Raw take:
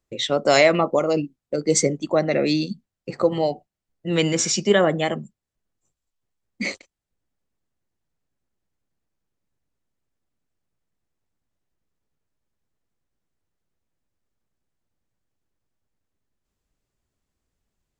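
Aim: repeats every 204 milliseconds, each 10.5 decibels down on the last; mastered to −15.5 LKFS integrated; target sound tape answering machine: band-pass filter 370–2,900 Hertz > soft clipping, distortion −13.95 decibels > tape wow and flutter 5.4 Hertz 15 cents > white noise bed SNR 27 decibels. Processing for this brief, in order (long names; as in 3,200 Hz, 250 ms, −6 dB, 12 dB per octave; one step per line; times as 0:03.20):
band-pass filter 370–2,900 Hz
repeating echo 204 ms, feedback 30%, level −10.5 dB
soft clipping −14.5 dBFS
tape wow and flutter 5.4 Hz 15 cents
white noise bed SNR 27 dB
level +10.5 dB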